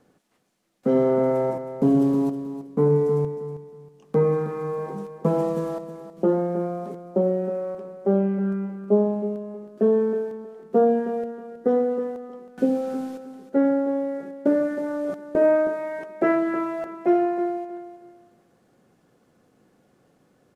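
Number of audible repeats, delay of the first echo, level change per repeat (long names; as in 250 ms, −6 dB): 2, 318 ms, −12.0 dB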